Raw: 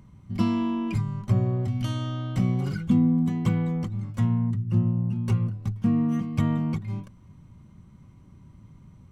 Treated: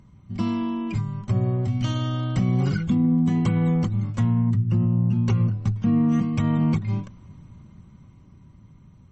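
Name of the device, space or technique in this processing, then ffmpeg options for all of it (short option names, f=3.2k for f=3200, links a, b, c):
low-bitrate web radio: -af "dynaudnorm=f=220:g=17:m=8dB,alimiter=limit=-13dB:level=0:latency=1:release=64" -ar 48000 -c:a libmp3lame -b:a 32k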